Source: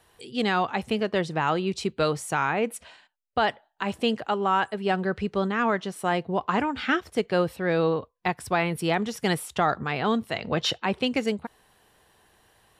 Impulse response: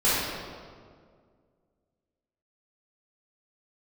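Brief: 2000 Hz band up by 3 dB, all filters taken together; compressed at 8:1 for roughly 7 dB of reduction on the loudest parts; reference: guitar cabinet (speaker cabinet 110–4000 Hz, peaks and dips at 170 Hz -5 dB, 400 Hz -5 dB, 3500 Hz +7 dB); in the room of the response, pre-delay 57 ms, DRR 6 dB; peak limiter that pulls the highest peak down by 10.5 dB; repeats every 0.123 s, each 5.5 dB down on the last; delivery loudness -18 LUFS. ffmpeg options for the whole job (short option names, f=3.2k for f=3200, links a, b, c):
-filter_complex "[0:a]equalizer=f=2k:t=o:g=3.5,acompressor=threshold=-25dB:ratio=8,alimiter=limit=-20.5dB:level=0:latency=1,aecho=1:1:123|246|369|492|615|738|861:0.531|0.281|0.149|0.079|0.0419|0.0222|0.0118,asplit=2[a][b];[1:a]atrim=start_sample=2205,adelay=57[c];[b][c]afir=irnorm=-1:irlink=0,volume=-22dB[d];[a][d]amix=inputs=2:normalize=0,highpass=110,equalizer=f=170:t=q:w=4:g=-5,equalizer=f=400:t=q:w=4:g=-5,equalizer=f=3.5k:t=q:w=4:g=7,lowpass=f=4k:w=0.5412,lowpass=f=4k:w=1.3066,volume=13dB"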